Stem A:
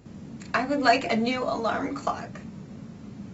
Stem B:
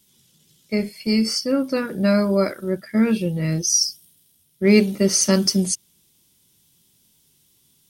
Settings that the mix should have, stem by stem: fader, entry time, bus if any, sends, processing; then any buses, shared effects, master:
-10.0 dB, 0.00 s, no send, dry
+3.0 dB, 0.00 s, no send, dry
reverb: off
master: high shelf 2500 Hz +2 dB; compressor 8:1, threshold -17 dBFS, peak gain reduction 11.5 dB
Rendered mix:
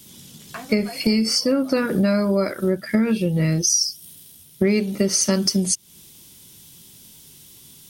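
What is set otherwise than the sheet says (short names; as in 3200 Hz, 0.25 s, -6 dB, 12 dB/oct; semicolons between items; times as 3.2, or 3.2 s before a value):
stem B +3.0 dB -> +14.0 dB; master: missing high shelf 2500 Hz +2 dB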